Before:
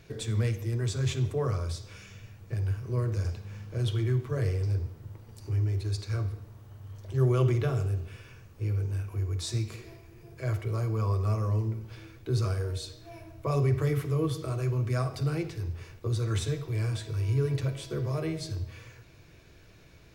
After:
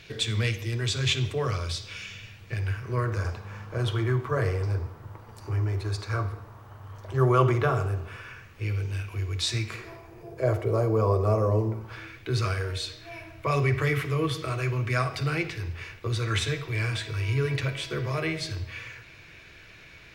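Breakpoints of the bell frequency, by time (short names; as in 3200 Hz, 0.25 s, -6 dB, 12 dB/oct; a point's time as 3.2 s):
bell +14.5 dB 2 oct
2.36 s 3000 Hz
3.32 s 1100 Hz
8.08 s 1100 Hz
8.75 s 2800 Hz
9.42 s 2800 Hz
10.32 s 560 Hz
11.6 s 560 Hz
12.15 s 2200 Hz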